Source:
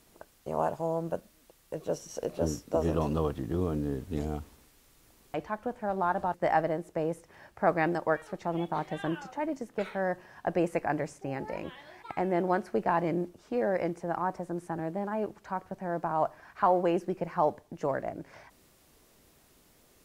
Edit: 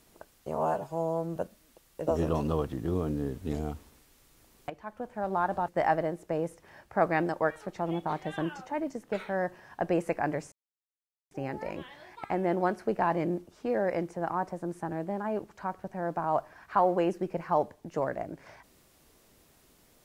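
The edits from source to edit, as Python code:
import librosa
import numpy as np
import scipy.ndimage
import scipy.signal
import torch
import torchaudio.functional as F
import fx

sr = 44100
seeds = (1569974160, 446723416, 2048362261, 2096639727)

y = fx.edit(x, sr, fx.stretch_span(start_s=0.55, length_s=0.54, factor=1.5),
    fx.cut(start_s=1.8, length_s=0.93),
    fx.fade_in_from(start_s=5.36, length_s=0.63, floor_db=-12.0),
    fx.insert_silence(at_s=11.18, length_s=0.79), tone=tone)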